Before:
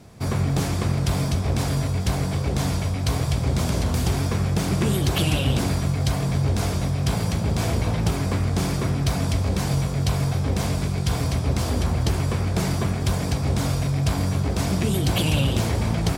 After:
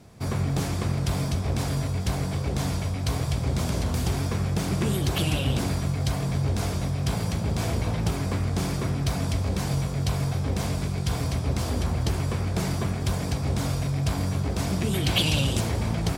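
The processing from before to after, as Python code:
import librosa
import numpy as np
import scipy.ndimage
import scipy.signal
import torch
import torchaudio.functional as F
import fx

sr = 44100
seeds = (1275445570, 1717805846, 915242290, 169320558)

y = fx.peak_eq(x, sr, hz=fx.line((14.92, 1800.0), (15.59, 8800.0)), db=8.5, octaves=1.4, at=(14.92, 15.59), fade=0.02)
y = F.gain(torch.from_numpy(y), -3.5).numpy()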